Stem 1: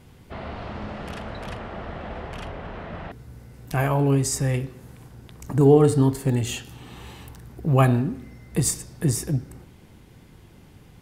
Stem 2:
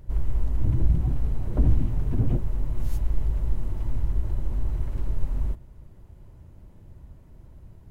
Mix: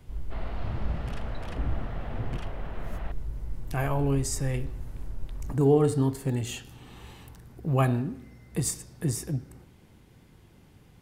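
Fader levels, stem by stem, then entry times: −6.0, −10.0 decibels; 0.00, 0.00 seconds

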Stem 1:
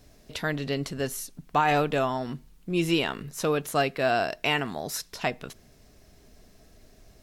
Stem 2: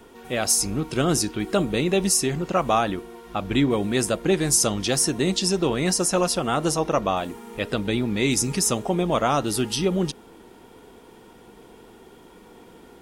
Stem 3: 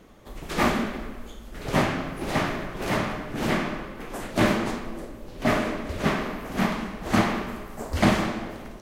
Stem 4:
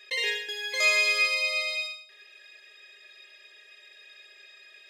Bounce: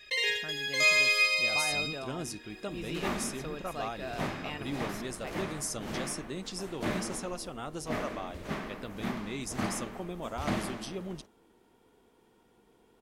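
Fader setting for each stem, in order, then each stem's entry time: −15.5, −16.5, −12.0, −1.0 decibels; 0.00, 1.10, 2.45, 0.00 seconds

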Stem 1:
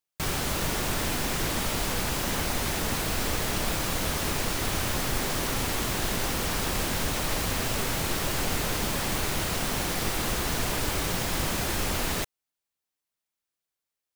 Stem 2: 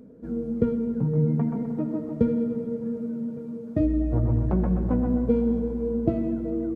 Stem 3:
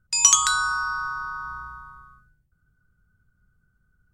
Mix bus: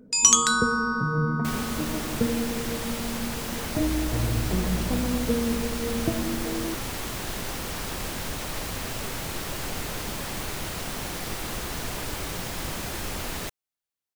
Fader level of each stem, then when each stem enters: −4.0, −3.5, −1.0 decibels; 1.25, 0.00, 0.00 seconds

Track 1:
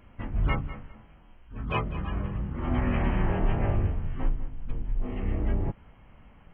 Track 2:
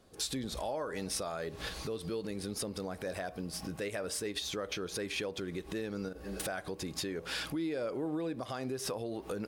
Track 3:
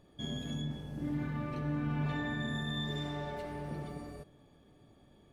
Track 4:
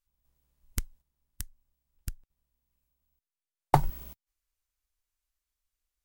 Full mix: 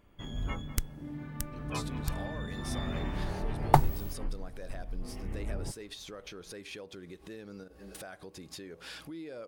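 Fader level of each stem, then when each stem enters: −9.5, −8.0, −6.0, +1.0 decibels; 0.00, 1.55, 0.00, 0.00 seconds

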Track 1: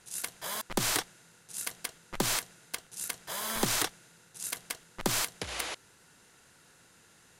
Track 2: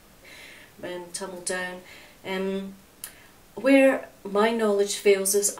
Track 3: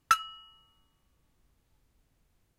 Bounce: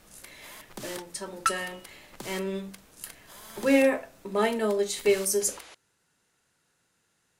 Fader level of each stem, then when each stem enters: −12.0, −3.5, −2.0 decibels; 0.00, 0.00, 1.35 seconds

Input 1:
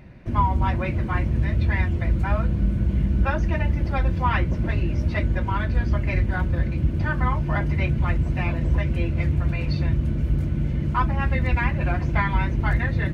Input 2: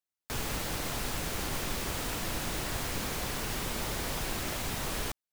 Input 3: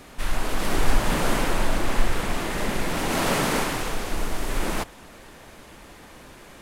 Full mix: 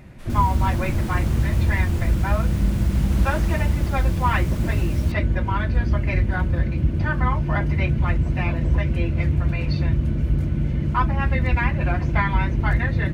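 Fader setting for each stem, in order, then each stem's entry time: +1.5, −7.5, −15.0 decibels; 0.00, 0.00, 0.00 seconds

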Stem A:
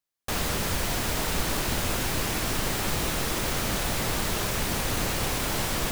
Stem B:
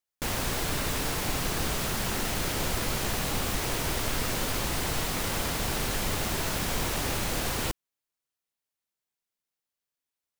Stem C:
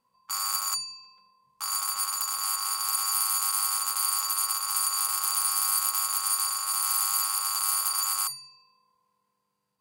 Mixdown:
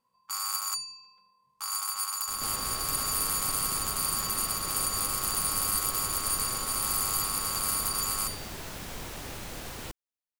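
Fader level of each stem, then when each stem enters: −20.0, −10.0, −3.0 decibels; 2.00, 2.20, 0.00 seconds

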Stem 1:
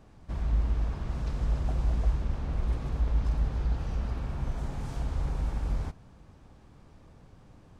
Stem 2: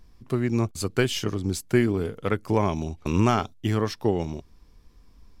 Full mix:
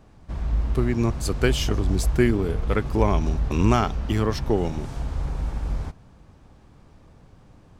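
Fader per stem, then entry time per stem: +3.0, +1.0 decibels; 0.00, 0.45 seconds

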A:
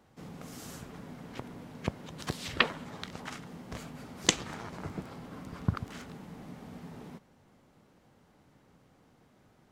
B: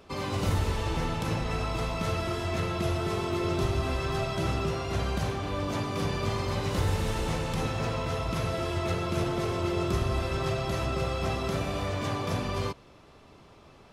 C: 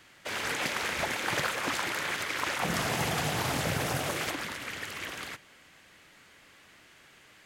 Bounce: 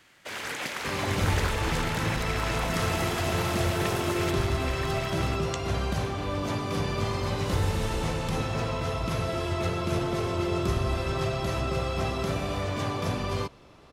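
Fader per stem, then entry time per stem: −13.5, +1.0, −2.0 decibels; 1.25, 0.75, 0.00 seconds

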